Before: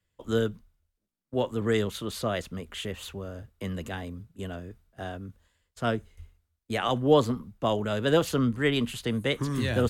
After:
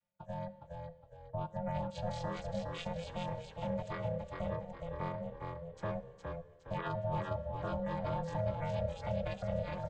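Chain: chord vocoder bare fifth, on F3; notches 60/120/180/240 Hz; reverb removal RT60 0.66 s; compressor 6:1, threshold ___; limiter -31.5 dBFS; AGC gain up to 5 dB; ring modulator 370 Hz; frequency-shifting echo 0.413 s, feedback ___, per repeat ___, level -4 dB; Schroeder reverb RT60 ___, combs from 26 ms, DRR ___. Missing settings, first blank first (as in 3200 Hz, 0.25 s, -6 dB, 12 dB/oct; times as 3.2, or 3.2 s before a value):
-35 dBFS, 39%, -34 Hz, 1.5 s, 16 dB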